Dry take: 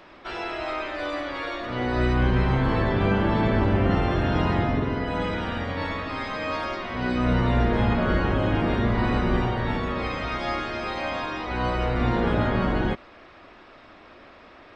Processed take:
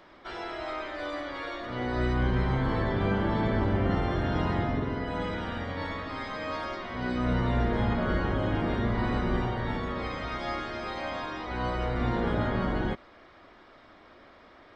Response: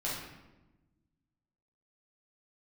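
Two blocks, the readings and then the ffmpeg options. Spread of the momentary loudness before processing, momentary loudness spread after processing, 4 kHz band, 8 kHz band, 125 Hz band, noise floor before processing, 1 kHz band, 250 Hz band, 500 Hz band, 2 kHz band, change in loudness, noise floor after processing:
8 LU, 8 LU, −5.5 dB, can't be measured, −5.0 dB, −49 dBFS, −5.0 dB, −5.0 dB, −5.0 dB, −5.5 dB, −5.0 dB, −54 dBFS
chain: -af "bandreject=frequency=2600:width=7.8,volume=-5dB"

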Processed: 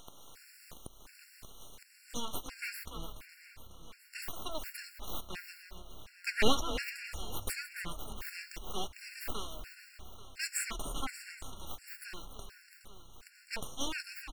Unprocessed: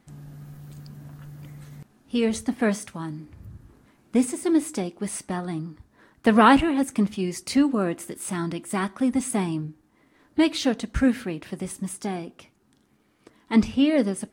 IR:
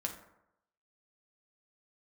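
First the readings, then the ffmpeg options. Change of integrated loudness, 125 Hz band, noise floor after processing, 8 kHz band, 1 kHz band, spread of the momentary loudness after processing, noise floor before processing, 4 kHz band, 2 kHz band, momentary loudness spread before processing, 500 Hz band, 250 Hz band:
−15.0 dB, −17.0 dB, −60 dBFS, −7.5 dB, −16.0 dB, 19 LU, −64 dBFS, −4.5 dB, −8.5 dB, 22 LU, −16.0 dB, −24.5 dB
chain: -filter_complex "[0:a]highpass=700,equalizer=frequency=4500:width=1.2:gain=9.5,aeval=exprs='abs(val(0))':channel_layout=same,asplit=2[link_01][link_02];[link_02]aecho=0:1:418|836|1254|1672:0.133|0.0667|0.0333|0.0167[link_03];[link_01][link_03]amix=inputs=2:normalize=0,acompressor=mode=upward:threshold=-34dB:ratio=2.5,asplit=2[link_04][link_05];[link_05]asplit=4[link_06][link_07][link_08][link_09];[link_06]adelay=290,afreqshift=33,volume=-11dB[link_10];[link_07]adelay=580,afreqshift=66,volume=-19.9dB[link_11];[link_08]adelay=870,afreqshift=99,volume=-28.7dB[link_12];[link_09]adelay=1160,afreqshift=132,volume=-37.6dB[link_13];[link_10][link_11][link_12][link_13]amix=inputs=4:normalize=0[link_14];[link_04][link_14]amix=inputs=2:normalize=0,afftfilt=real='re*gt(sin(2*PI*1.4*pts/sr)*(1-2*mod(floor(b*sr/1024/1400),2)),0)':imag='im*gt(sin(2*PI*1.4*pts/sr)*(1-2*mod(floor(b*sr/1024/1400),2)),0)':win_size=1024:overlap=0.75,volume=-4dB"

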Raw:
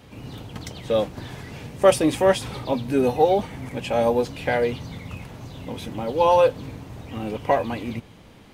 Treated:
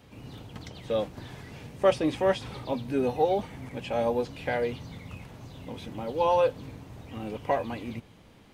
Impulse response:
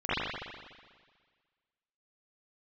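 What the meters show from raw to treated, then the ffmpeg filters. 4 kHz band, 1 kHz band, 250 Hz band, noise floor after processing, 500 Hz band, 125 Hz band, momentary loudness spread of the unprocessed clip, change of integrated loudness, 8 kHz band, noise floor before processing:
−7.0 dB, −6.5 dB, −6.5 dB, −54 dBFS, −6.5 dB, −6.5 dB, 19 LU, −6.5 dB, below −10 dB, −48 dBFS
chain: -filter_complex "[0:a]acrossover=split=5700[link_01][link_02];[link_02]acompressor=threshold=-52dB:ratio=4:attack=1:release=60[link_03];[link_01][link_03]amix=inputs=2:normalize=0,volume=-6.5dB"

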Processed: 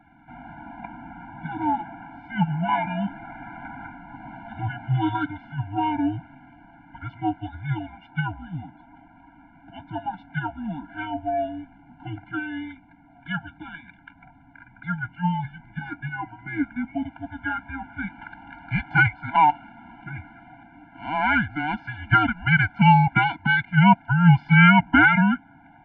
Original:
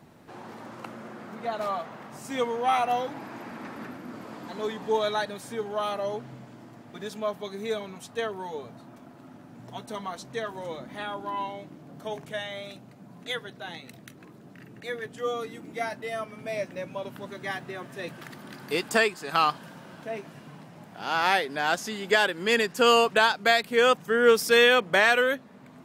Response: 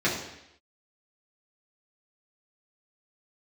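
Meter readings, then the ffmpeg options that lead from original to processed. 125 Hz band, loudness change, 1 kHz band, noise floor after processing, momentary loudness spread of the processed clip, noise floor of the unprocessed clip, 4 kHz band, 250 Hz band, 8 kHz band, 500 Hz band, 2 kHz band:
+21.5 dB, +4.0 dB, +5.0 dB, −53 dBFS, 23 LU, −50 dBFS, −6.5 dB, +12.0 dB, below −40 dB, −11.5 dB, +4.0 dB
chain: -af "highpass=frequency=340:width=0.5412,highpass=frequency=340:width=1.3066,highpass=frequency=470:width_type=q:width=0.5412,highpass=frequency=470:width_type=q:width=1.307,lowpass=frequency=2700:width_type=q:width=0.5176,lowpass=frequency=2700:width_type=q:width=0.7071,lowpass=frequency=2700:width_type=q:width=1.932,afreqshift=-310,afftfilt=real='re*eq(mod(floor(b*sr/1024/340),2),0)':imag='im*eq(mod(floor(b*sr/1024/340),2),0)':win_size=1024:overlap=0.75,volume=8.5dB"

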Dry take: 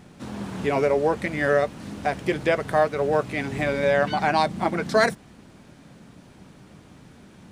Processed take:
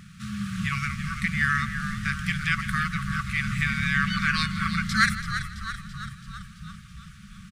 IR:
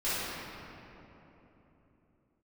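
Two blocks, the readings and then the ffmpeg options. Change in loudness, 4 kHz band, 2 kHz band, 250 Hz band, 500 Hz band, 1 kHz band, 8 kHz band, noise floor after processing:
−3.0 dB, +4.0 dB, +3.5 dB, −1.0 dB, below −40 dB, −6.0 dB, +3.5 dB, −47 dBFS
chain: -filter_complex "[0:a]asplit=2[link_01][link_02];[link_02]asplit=8[link_03][link_04][link_05][link_06][link_07][link_08][link_09][link_10];[link_03]adelay=333,afreqshift=-99,volume=-10dB[link_11];[link_04]adelay=666,afreqshift=-198,volume=-13.9dB[link_12];[link_05]adelay=999,afreqshift=-297,volume=-17.8dB[link_13];[link_06]adelay=1332,afreqshift=-396,volume=-21.6dB[link_14];[link_07]adelay=1665,afreqshift=-495,volume=-25.5dB[link_15];[link_08]adelay=1998,afreqshift=-594,volume=-29.4dB[link_16];[link_09]adelay=2331,afreqshift=-693,volume=-33.3dB[link_17];[link_10]adelay=2664,afreqshift=-792,volume=-37.1dB[link_18];[link_11][link_12][link_13][link_14][link_15][link_16][link_17][link_18]amix=inputs=8:normalize=0[link_19];[link_01][link_19]amix=inputs=2:normalize=0,afftfilt=real='re*(1-between(b*sr/4096,220,1100))':imag='im*(1-between(b*sr/4096,220,1100))':win_size=4096:overlap=0.75,asplit=2[link_20][link_21];[link_21]aecho=0:1:162:0.15[link_22];[link_20][link_22]amix=inputs=2:normalize=0,volume=3dB"

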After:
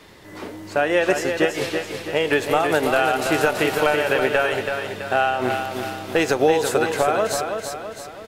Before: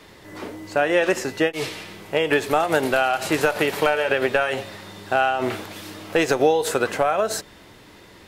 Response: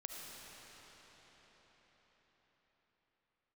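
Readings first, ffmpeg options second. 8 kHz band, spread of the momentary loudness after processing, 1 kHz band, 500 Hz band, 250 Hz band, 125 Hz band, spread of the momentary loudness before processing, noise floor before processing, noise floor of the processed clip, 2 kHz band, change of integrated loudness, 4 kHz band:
+1.0 dB, 9 LU, +1.0 dB, +1.5 dB, +1.5 dB, +2.0 dB, 16 LU, −48 dBFS, −39 dBFS, +1.5 dB, +0.5 dB, +1.0 dB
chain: -af "aecho=1:1:330|660|990|1320|1650|1980:0.501|0.246|0.12|0.059|0.0289|0.0142"

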